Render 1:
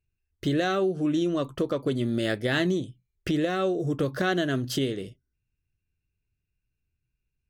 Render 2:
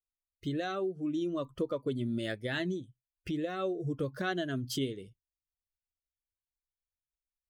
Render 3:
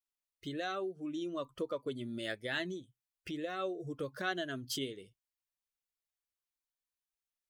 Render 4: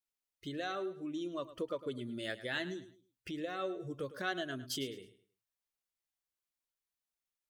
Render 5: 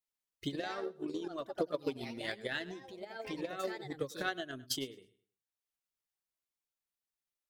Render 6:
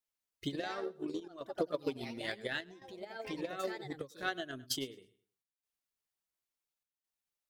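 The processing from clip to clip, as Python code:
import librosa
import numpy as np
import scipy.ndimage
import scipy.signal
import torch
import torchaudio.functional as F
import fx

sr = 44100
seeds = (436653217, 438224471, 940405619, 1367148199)

y1 = fx.bin_expand(x, sr, power=1.5)
y1 = fx.rider(y1, sr, range_db=10, speed_s=0.5)
y1 = y1 * librosa.db_to_amplitude(-5.0)
y2 = fx.low_shelf(y1, sr, hz=320.0, db=-12.0)
y3 = fx.echo_feedback(y2, sr, ms=106, feedback_pct=30, wet_db=-14.5)
y3 = y3 * librosa.db_to_amplitude(-1.0)
y4 = fx.echo_pitch(y3, sr, ms=135, semitones=3, count=2, db_per_echo=-6.0)
y4 = fx.transient(y4, sr, attack_db=11, sustain_db=-5)
y4 = y4 * librosa.db_to_amplitude(-3.5)
y5 = fx.chopper(y4, sr, hz=0.71, depth_pct=65, duty_pct=85)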